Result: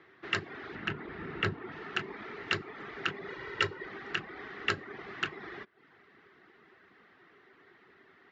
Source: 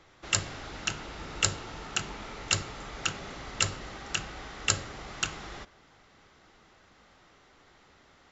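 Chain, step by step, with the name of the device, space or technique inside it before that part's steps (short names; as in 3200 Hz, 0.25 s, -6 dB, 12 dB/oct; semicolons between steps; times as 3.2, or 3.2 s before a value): kitchen radio (speaker cabinet 160–3700 Hz, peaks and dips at 390 Hz +9 dB, 560 Hz -8 dB, 850 Hz -5 dB, 1800 Hz +8 dB); reverb removal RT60 0.52 s; bell 3400 Hz -4.5 dB 0.93 oct; 0.75–1.72 tone controls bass +8 dB, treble -10 dB; 3.28–3.86 comb 2.1 ms, depth 69%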